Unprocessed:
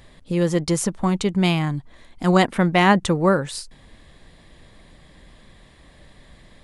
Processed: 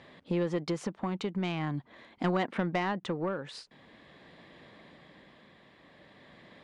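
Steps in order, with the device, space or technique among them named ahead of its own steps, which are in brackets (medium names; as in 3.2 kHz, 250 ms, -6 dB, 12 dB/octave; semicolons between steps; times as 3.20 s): AM radio (band-pass 190–3300 Hz; compression 8:1, threshold -24 dBFS, peak gain reduction 14 dB; saturation -18 dBFS, distortion -20 dB; tremolo 0.44 Hz, depth 38%)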